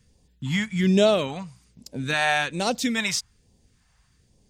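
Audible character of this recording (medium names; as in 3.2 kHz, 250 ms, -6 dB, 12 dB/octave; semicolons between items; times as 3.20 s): phasing stages 2, 1.2 Hz, lowest notch 340–1400 Hz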